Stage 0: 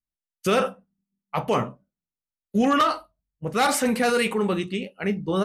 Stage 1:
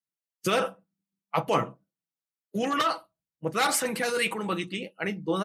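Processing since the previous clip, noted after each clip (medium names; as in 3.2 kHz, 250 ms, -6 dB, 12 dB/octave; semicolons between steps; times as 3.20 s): high-pass 95 Hz 24 dB/octave; harmonic-percussive split harmonic -9 dB; comb 6.1 ms, depth 42%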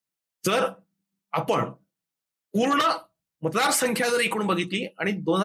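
peak limiter -19 dBFS, peak gain reduction 8.5 dB; trim +6 dB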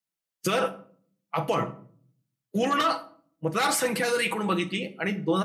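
simulated room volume 640 m³, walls furnished, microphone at 0.7 m; trim -3 dB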